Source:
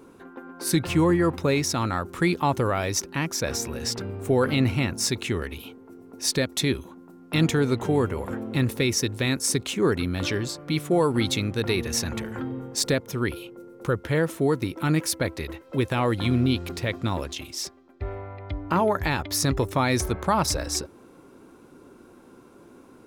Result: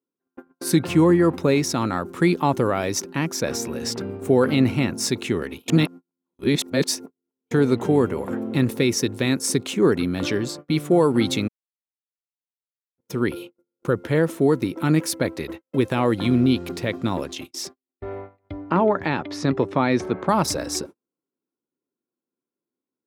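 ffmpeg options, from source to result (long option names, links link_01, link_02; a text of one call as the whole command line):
ffmpeg -i in.wav -filter_complex "[0:a]asettb=1/sr,asplit=3[link_01][link_02][link_03];[link_01]atrim=end=18.704[link_04];[link_02]atrim=start=18.7:end=20.29,asetpts=PTS-STARTPTS,afade=type=in:duration=0.004:curve=qsin,afade=type=out:start_time=1.586:duration=0.004:curve=qsin,highpass=120,lowpass=3400[link_05];[link_03]atrim=start=20.286[link_06];[link_04][link_05]acrossfade=duration=0.004:curve1=hsin:curve2=qsin[link_07];[link_07][link_06]acrossfade=duration=0.004:curve1=qsin:curve2=hsin,asplit=5[link_08][link_09][link_10][link_11][link_12];[link_08]atrim=end=5.682[link_13];[link_09]atrim=start=5.678:end=7.512,asetpts=PTS-STARTPTS,areverse[link_14];[link_10]atrim=start=7.508:end=11.48,asetpts=PTS-STARTPTS,afade=type=out:start_time=3.968:duration=0.004:curve=hsin[link_15];[link_11]atrim=start=11.48:end=12.98,asetpts=PTS-STARTPTS,volume=0[link_16];[link_12]atrim=start=12.98,asetpts=PTS-STARTPTS,afade=type=in:duration=0.004:curve=hsin[link_17];[link_13][link_14]acrossfade=duration=0.004:curve1=hsin:curve2=hsin[link_18];[link_15][link_16][link_17]concat=n=3:v=0:a=1[link_19];[link_18][link_19]acrossfade=duration=0.004:curve1=hsin:curve2=hsin,highpass=180,agate=range=-44dB:threshold=-38dB:ratio=16:detection=peak,lowshelf=frequency=480:gain=8" out.wav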